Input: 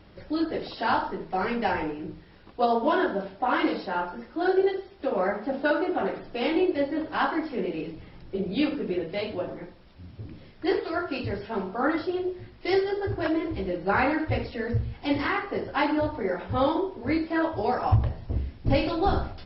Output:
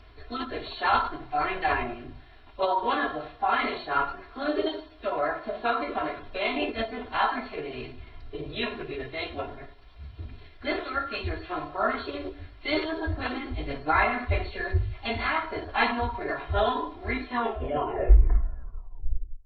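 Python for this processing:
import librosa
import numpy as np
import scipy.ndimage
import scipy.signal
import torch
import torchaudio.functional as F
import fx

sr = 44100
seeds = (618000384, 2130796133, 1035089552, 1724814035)

y = fx.tape_stop_end(x, sr, length_s=2.23)
y = fx.peak_eq(y, sr, hz=350.0, db=-12.0, octaves=1.0)
y = y + 0.97 * np.pad(y, (int(2.3 * sr / 1000.0), 0))[:len(y)]
y = fx.pitch_keep_formants(y, sr, semitones=-4.0)
y = fx.rev_double_slope(y, sr, seeds[0], early_s=0.23, late_s=1.9, knee_db=-22, drr_db=14.0)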